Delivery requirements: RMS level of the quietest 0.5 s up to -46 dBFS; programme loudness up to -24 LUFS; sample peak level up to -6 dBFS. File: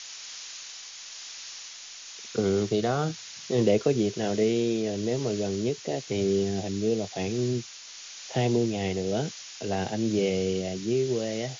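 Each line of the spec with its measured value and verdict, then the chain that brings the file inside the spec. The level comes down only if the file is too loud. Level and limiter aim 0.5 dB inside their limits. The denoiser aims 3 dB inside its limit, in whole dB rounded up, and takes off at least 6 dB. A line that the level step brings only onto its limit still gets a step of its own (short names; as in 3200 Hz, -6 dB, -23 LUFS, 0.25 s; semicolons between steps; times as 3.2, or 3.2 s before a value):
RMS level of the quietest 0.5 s -44 dBFS: fail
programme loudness -28.0 LUFS: OK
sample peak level -10.5 dBFS: OK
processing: denoiser 6 dB, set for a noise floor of -44 dBFS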